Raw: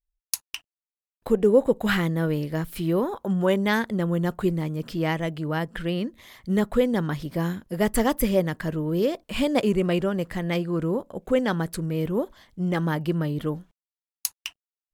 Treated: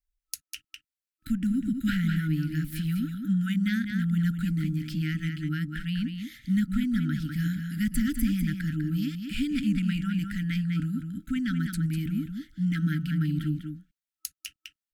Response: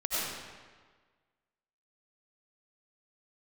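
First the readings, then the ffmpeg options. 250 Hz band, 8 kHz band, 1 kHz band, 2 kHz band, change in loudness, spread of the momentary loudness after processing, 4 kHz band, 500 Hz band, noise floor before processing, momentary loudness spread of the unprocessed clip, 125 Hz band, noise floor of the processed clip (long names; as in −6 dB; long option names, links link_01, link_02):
−1.0 dB, −7.0 dB, −16.5 dB, −5.5 dB, −3.5 dB, 11 LU, −5.0 dB, below −25 dB, below −85 dBFS, 9 LU, +0.5 dB, below −85 dBFS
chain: -filter_complex "[0:a]asplit=2[link_01][link_02];[link_02]adelay=198.3,volume=-7dB,highshelf=frequency=4000:gain=-4.46[link_03];[link_01][link_03]amix=inputs=2:normalize=0,afftfilt=real='re*(1-between(b*sr/4096,320,1300))':imag='im*(1-between(b*sr/4096,320,1300))':win_size=4096:overlap=0.75,acrossover=split=270[link_04][link_05];[link_05]acompressor=threshold=-39dB:ratio=2[link_06];[link_04][link_06]amix=inputs=2:normalize=0"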